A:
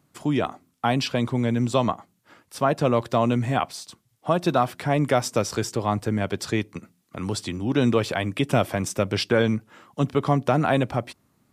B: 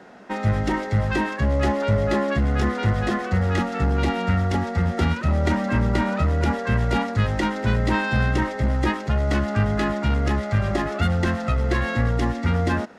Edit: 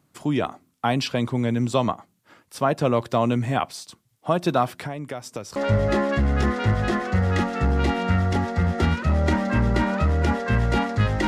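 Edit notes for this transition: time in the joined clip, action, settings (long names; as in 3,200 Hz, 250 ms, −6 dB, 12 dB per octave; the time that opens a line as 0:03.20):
A
0:04.69–0:05.56: downward compressor 8 to 1, threshold −29 dBFS
0:05.56: continue with B from 0:01.75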